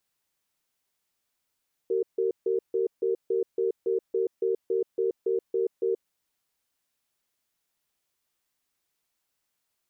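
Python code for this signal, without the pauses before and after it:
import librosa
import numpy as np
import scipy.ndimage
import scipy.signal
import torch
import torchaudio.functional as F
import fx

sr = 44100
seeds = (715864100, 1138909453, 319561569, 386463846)

y = fx.cadence(sr, length_s=4.19, low_hz=382.0, high_hz=458.0, on_s=0.13, off_s=0.15, level_db=-25.5)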